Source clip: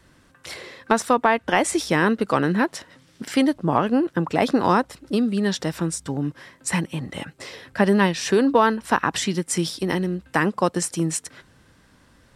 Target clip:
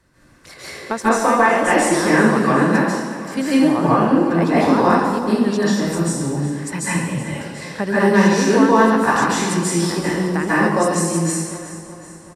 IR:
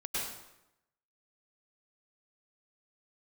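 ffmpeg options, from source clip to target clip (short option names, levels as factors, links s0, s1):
-filter_complex "[0:a]equalizer=f=3200:t=o:w=0.42:g=-6.5,aecho=1:1:374|748|1122|1496|1870:0.188|0.104|0.057|0.0313|0.0172[s0];[1:a]atrim=start_sample=2205,asetrate=31311,aresample=44100[s1];[s0][s1]afir=irnorm=-1:irlink=0,volume=0.794"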